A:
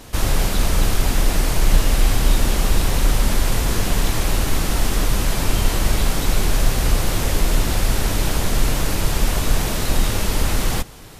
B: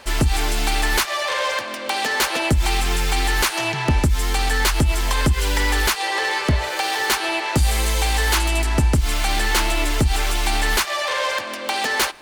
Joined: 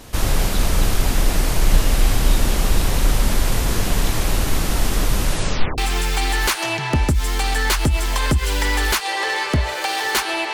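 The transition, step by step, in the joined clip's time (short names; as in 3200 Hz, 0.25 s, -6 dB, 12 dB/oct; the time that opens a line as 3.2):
A
5.26 tape stop 0.52 s
5.78 switch to B from 2.73 s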